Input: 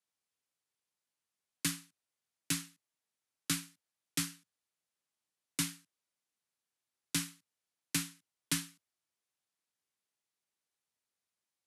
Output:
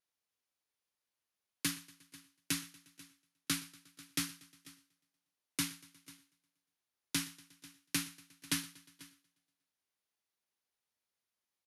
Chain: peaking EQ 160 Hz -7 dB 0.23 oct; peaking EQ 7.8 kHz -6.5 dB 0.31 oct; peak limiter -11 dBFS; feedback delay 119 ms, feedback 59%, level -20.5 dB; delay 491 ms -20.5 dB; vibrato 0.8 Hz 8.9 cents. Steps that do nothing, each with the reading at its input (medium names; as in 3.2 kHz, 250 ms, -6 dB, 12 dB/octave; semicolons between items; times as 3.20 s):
peak limiter -11 dBFS: peak at its input -18.0 dBFS